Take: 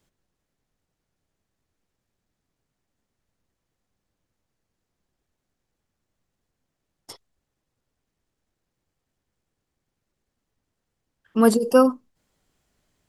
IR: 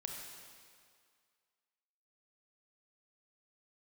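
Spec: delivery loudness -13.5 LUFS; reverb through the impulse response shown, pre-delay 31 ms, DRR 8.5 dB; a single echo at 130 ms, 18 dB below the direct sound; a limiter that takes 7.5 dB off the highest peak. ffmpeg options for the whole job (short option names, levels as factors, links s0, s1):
-filter_complex "[0:a]alimiter=limit=0.282:level=0:latency=1,aecho=1:1:130:0.126,asplit=2[s0][s1];[1:a]atrim=start_sample=2205,adelay=31[s2];[s1][s2]afir=irnorm=-1:irlink=0,volume=0.422[s3];[s0][s3]amix=inputs=2:normalize=0,volume=2.66"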